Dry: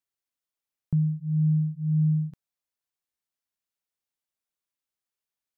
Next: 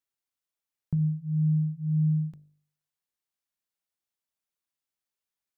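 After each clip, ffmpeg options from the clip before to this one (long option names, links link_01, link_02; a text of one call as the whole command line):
ffmpeg -i in.wav -af "bandreject=frequency=49.91:width_type=h:width=4,bandreject=frequency=99.82:width_type=h:width=4,bandreject=frequency=149.73:width_type=h:width=4,bandreject=frequency=199.64:width_type=h:width=4,bandreject=frequency=249.55:width_type=h:width=4,bandreject=frequency=299.46:width_type=h:width=4,bandreject=frequency=349.37:width_type=h:width=4,bandreject=frequency=399.28:width_type=h:width=4,bandreject=frequency=449.19:width_type=h:width=4,bandreject=frequency=499.1:width_type=h:width=4,bandreject=frequency=549.01:width_type=h:width=4,bandreject=frequency=598.92:width_type=h:width=4,bandreject=frequency=648.83:width_type=h:width=4,volume=-1dB" out.wav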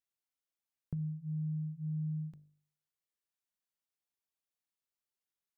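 ffmpeg -i in.wav -af "acompressor=threshold=-30dB:ratio=4,volume=-5.5dB" out.wav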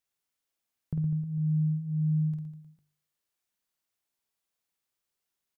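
ffmpeg -i in.wav -af "aecho=1:1:50|115|199.5|309.4|452.2:0.631|0.398|0.251|0.158|0.1,volume=5dB" out.wav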